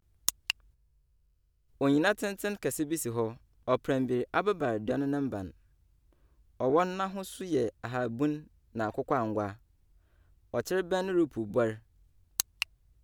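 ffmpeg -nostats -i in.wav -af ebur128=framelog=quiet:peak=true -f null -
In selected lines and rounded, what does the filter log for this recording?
Integrated loudness:
  I:         -31.5 LUFS
  Threshold: -42.3 LUFS
Loudness range:
  LRA:         3.1 LU
  Threshold: -52.5 LUFS
  LRA low:   -33.9 LUFS
  LRA high:  -30.9 LUFS
True peak:
  Peak:       -8.6 dBFS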